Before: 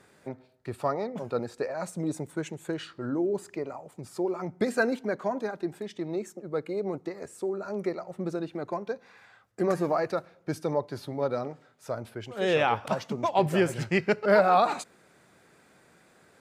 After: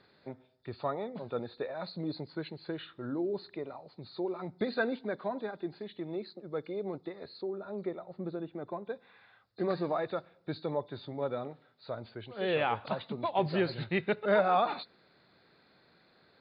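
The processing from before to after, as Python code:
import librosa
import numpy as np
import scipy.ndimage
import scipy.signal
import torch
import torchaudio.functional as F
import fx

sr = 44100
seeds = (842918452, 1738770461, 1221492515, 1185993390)

y = fx.freq_compress(x, sr, knee_hz=3400.0, ratio=4.0)
y = fx.high_shelf(y, sr, hz=2100.0, db=-9.5, at=(7.41, 8.9))
y = F.gain(torch.from_numpy(y), -5.5).numpy()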